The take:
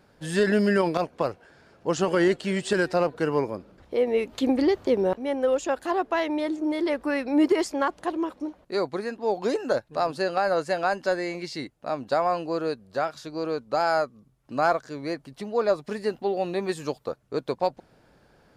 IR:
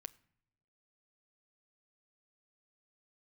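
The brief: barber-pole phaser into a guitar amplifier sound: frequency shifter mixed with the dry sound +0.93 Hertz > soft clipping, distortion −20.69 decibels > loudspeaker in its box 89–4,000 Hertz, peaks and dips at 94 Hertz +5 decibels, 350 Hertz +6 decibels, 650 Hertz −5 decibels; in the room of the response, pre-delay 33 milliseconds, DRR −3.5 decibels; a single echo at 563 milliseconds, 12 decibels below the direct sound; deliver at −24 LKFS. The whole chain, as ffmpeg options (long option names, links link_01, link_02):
-filter_complex "[0:a]aecho=1:1:563:0.251,asplit=2[link_01][link_02];[1:a]atrim=start_sample=2205,adelay=33[link_03];[link_02][link_03]afir=irnorm=-1:irlink=0,volume=8.5dB[link_04];[link_01][link_04]amix=inputs=2:normalize=0,asplit=2[link_05][link_06];[link_06]afreqshift=0.93[link_07];[link_05][link_07]amix=inputs=2:normalize=1,asoftclip=threshold=-10.5dB,highpass=89,equalizer=frequency=94:width_type=q:width=4:gain=5,equalizer=frequency=350:width_type=q:width=4:gain=6,equalizer=frequency=650:width_type=q:width=4:gain=-5,lowpass=frequency=4000:width=0.5412,lowpass=frequency=4000:width=1.3066"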